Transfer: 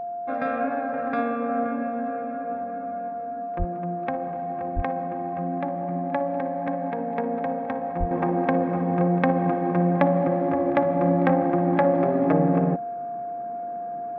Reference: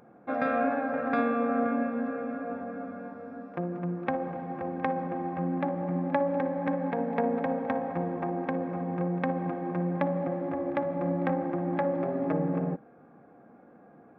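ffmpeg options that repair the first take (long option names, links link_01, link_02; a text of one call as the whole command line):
ffmpeg -i in.wav -filter_complex "[0:a]bandreject=frequency=700:width=30,asplit=3[link_01][link_02][link_03];[link_01]afade=type=out:start_time=3.58:duration=0.02[link_04];[link_02]highpass=frequency=140:width=0.5412,highpass=frequency=140:width=1.3066,afade=type=in:start_time=3.58:duration=0.02,afade=type=out:start_time=3.7:duration=0.02[link_05];[link_03]afade=type=in:start_time=3.7:duration=0.02[link_06];[link_04][link_05][link_06]amix=inputs=3:normalize=0,asplit=3[link_07][link_08][link_09];[link_07]afade=type=out:start_time=4.75:duration=0.02[link_10];[link_08]highpass=frequency=140:width=0.5412,highpass=frequency=140:width=1.3066,afade=type=in:start_time=4.75:duration=0.02,afade=type=out:start_time=4.87:duration=0.02[link_11];[link_09]afade=type=in:start_time=4.87:duration=0.02[link_12];[link_10][link_11][link_12]amix=inputs=3:normalize=0,asplit=3[link_13][link_14][link_15];[link_13]afade=type=out:start_time=7.99:duration=0.02[link_16];[link_14]highpass=frequency=140:width=0.5412,highpass=frequency=140:width=1.3066,afade=type=in:start_time=7.99:duration=0.02,afade=type=out:start_time=8.11:duration=0.02[link_17];[link_15]afade=type=in:start_time=8.11:duration=0.02[link_18];[link_16][link_17][link_18]amix=inputs=3:normalize=0,asetnsamples=nb_out_samples=441:pad=0,asendcmd='8.11 volume volume -8dB',volume=0dB" out.wav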